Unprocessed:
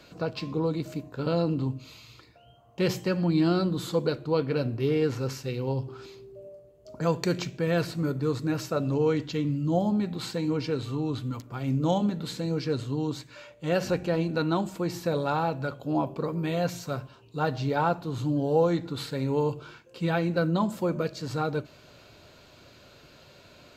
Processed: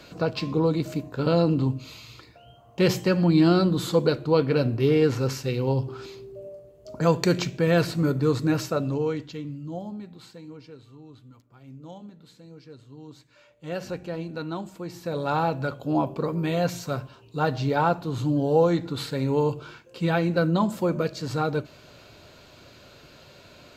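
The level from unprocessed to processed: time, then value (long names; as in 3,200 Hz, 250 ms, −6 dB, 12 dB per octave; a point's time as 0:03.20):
0:08.55 +5 dB
0:09.38 −6.5 dB
0:10.88 −17.5 dB
0:12.80 −17.5 dB
0:13.73 −6 dB
0:14.95 −6 dB
0:15.37 +3 dB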